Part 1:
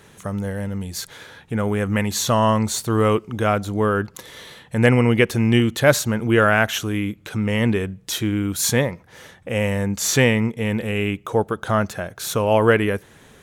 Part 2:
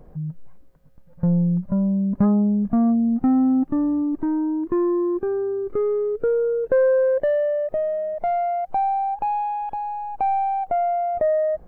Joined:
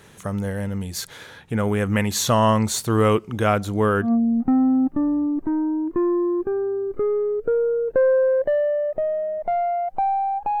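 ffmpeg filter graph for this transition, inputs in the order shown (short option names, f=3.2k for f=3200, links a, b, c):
-filter_complex "[0:a]apad=whole_dur=10.6,atrim=end=10.6,atrim=end=4.12,asetpts=PTS-STARTPTS[a];[1:a]atrim=start=2.76:end=9.36,asetpts=PTS-STARTPTS[b];[a][b]acrossfade=d=0.12:c1=tri:c2=tri"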